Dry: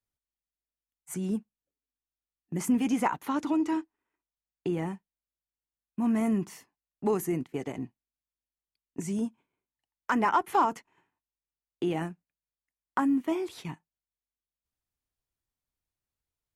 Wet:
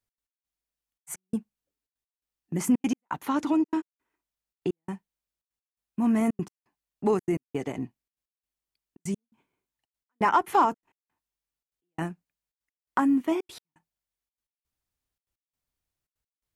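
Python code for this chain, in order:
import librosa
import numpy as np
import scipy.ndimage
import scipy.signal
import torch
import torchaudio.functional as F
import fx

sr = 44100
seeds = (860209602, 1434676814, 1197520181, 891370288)

y = fx.step_gate(x, sr, bpm=169, pattern='x.x..xxxxx', floor_db=-60.0, edge_ms=4.5)
y = F.gain(torch.from_numpy(y), 3.0).numpy()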